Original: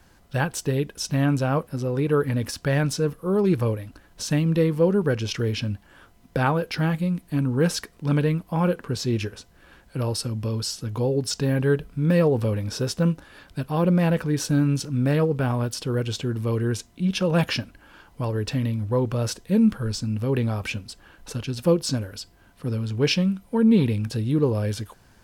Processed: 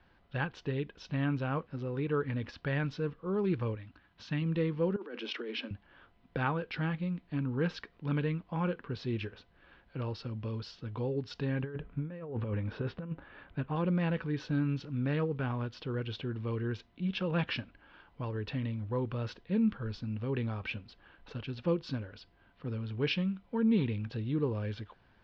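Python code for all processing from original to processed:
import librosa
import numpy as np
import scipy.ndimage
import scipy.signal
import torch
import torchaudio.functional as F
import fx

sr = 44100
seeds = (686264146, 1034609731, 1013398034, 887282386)

y = fx.chain(x, sr, fx.highpass(hz=60.0, slope=12),
    fx.peak_eq(hz=490.0, db=-9.0, octaves=0.98), at=(3.75, 4.42))
y = fx.chain(y, sr, fx.steep_highpass(hz=230.0, slope=96),
    fx.over_compress(threshold_db=-29.0, ratio=-1.0), at=(4.96, 5.71))
y = fx.chain(y, sr, fx.lowpass(hz=2400.0, slope=12),
    fx.over_compress(threshold_db=-24.0, ratio=-0.5), at=(11.63, 13.76))
y = fx.dynamic_eq(y, sr, hz=640.0, q=2.1, threshold_db=-38.0, ratio=4.0, max_db=-6)
y = scipy.signal.sosfilt(scipy.signal.cheby2(4, 50, 8600.0, 'lowpass', fs=sr, output='sos'), y)
y = fx.low_shelf(y, sr, hz=460.0, db=-3.5)
y = F.gain(torch.from_numpy(y), -7.0).numpy()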